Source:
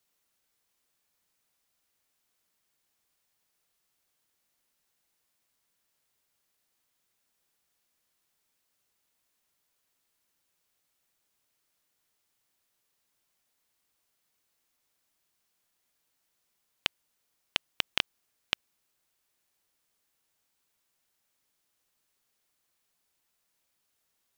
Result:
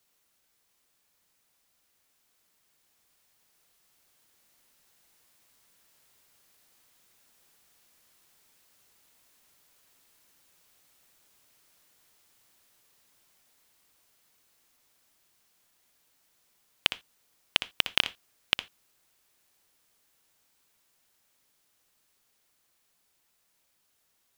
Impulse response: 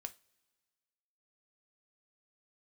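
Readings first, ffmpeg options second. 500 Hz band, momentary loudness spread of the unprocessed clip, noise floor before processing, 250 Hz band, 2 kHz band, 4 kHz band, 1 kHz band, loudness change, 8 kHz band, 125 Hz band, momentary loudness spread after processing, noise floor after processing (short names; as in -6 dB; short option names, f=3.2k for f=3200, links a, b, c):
+3.5 dB, 5 LU, -78 dBFS, +3.5 dB, +4.5 dB, +5.5 dB, +3.5 dB, +4.5 dB, +4.0 dB, +3.5 dB, 5 LU, -73 dBFS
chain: -filter_complex "[0:a]dynaudnorm=f=730:g=11:m=7.5dB,asplit=2[a][b];[1:a]atrim=start_sample=2205,atrim=end_sample=3969,adelay=60[c];[b][c]afir=irnorm=-1:irlink=0,volume=-10.5dB[d];[a][d]amix=inputs=2:normalize=0,acontrast=52,volume=-1dB"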